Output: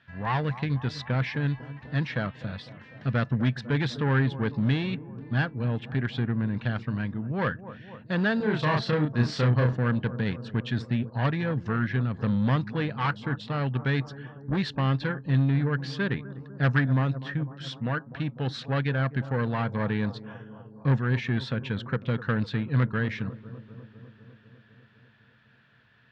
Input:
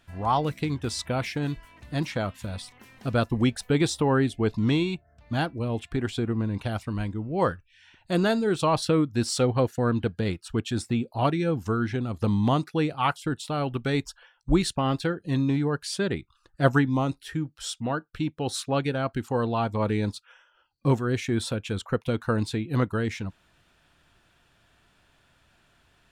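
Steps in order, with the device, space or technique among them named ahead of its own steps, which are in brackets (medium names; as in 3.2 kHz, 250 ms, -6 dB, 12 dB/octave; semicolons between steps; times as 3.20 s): analogue delay pedal into a guitar amplifier (bucket-brigade echo 250 ms, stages 2048, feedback 71%, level -17 dB; valve stage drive 21 dB, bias 0.4; cabinet simulation 100–4300 Hz, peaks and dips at 130 Hz +9 dB, 210 Hz +3 dB, 340 Hz -7 dB, 730 Hz -5 dB, 1.7 kHz +10 dB); 8.37–9.73 s: doubling 33 ms -2.5 dB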